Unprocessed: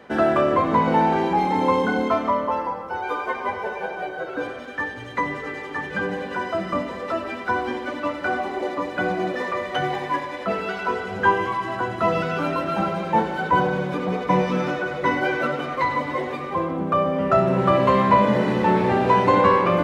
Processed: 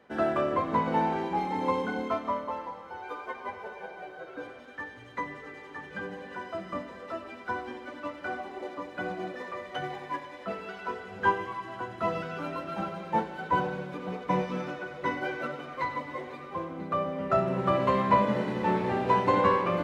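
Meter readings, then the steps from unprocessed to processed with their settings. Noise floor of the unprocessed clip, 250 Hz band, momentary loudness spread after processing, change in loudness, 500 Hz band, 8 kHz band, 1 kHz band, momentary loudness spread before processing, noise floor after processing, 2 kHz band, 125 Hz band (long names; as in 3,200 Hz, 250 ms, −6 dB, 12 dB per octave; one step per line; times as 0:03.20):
−33 dBFS, −9.0 dB, 15 LU, −8.5 dB, −9.0 dB, can't be measured, −8.5 dB, 10 LU, −46 dBFS, −10.0 dB, −9.0 dB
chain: delay with a high-pass on its return 496 ms, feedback 71%, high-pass 2,000 Hz, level −12 dB
expander for the loud parts 1.5 to 1, over −27 dBFS
level −5.5 dB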